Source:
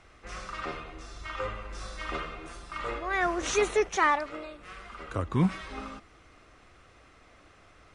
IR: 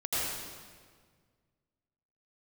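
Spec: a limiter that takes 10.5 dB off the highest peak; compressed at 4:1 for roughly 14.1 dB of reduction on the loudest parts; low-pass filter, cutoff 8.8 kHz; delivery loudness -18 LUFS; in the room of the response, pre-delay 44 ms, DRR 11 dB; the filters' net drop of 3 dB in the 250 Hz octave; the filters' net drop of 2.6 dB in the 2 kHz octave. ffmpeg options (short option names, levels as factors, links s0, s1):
-filter_complex "[0:a]lowpass=8800,equalizer=f=250:t=o:g=-5,equalizer=f=2000:t=o:g=-3,acompressor=threshold=0.0112:ratio=4,alimiter=level_in=4.73:limit=0.0631:level=0:latency=1,volume=0.211,asplit=2[s0][s1];[1:a]atrim=start_sample=2205,adelay=44[s2];[s1][s2]afir=irnorm=-1:irlink=0,volume=0.106[s3];[s0][s3]amix=inputs=2:normalize=0,volume=26.6"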